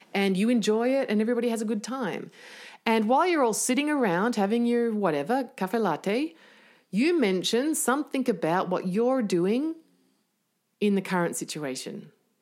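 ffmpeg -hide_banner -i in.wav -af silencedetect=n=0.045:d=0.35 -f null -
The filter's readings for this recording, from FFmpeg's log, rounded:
silence_start: 2.18
silence_end: 2.86 | silence_duration: 0.69
silence_start: 6.26
silence_end: 6.94 | silence_duration: 0.68
silence_start: 9.71
silence_end: 10.82 | silence_duration: 1.11
silence_start: 11.90
silence_end: 12.42 | silence_duration: 0.52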